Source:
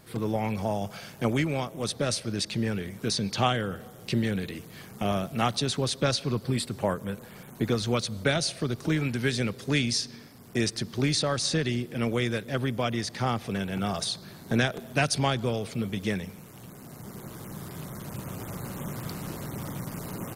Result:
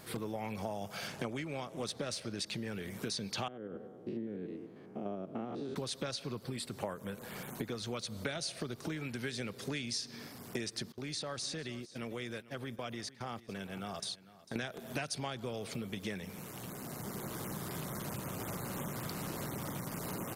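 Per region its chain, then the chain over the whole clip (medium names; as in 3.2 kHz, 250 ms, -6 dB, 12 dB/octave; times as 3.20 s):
1.07–2.38 s: median filter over 3 samples + low-pass 12 kHz
3.48–5.76 s: spectrogram pixelated in time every 100 ms + band-pass filter 330 Hz, Q 1.6 + delay 195 ms -22 dB
10.92–14.56 s: gate -34 dBFS, range -26 dB + compression 2:1, threshold -50 dBFS + delay 449 ms -18.5 dB
whole clip: compression 10:1, threshold -37 dBFS; bass shelf 180 Hz -7.5 dB; trim +3.5 dB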